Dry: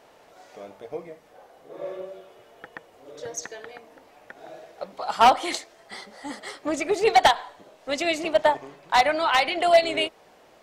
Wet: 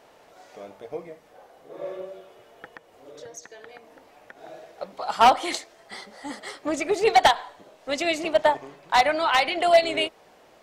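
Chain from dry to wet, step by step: 2.75–4.43 compressor 3:1, threshold -41 dBFS, peak gain reduction 10 dB

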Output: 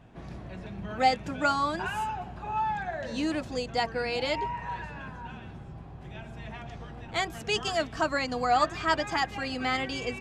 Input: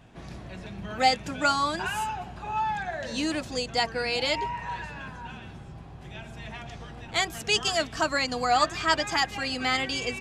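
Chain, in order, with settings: high shelf 2600 Hz -9.5 dB

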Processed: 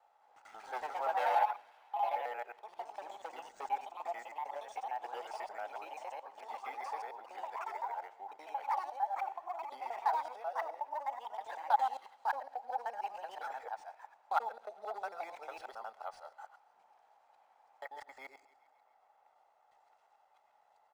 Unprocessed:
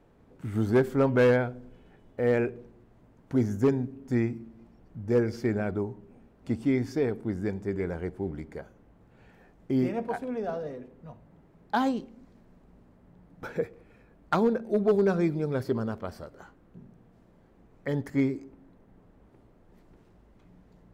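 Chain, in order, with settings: local time reversal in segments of 90 ms; high shelf 3600 Hz +7 dB; comb 1.5 ms, depth 41%; thin delay 0.135 s, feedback 64%, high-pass 2200 Hz, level -21 dB; in parallel at +1 dB: compressor, threshold -33 dBFS, peak gain reduction 15 dB; on the sum: echoes that change speed 0.217 s, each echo +3 st, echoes 3; ladder high-pass 780 Hz, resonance 75%; decimation joined by straight lines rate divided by 3×; gain -4 dB

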